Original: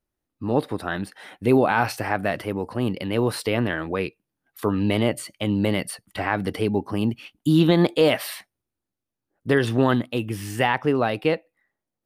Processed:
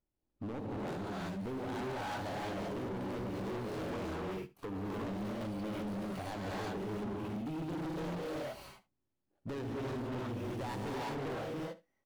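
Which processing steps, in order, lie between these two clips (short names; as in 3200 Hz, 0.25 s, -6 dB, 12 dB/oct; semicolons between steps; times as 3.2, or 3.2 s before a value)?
median filter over 25 samples; compressor, threshold -29 dBFS, peak gain reduction 15 dB; non-linear reverb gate 0.4 s rising, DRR -4.5 dB; overloaded stage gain 31.5 dB; on a send: echo 72 ms -18.5 dB; on the sum: gain -5 dB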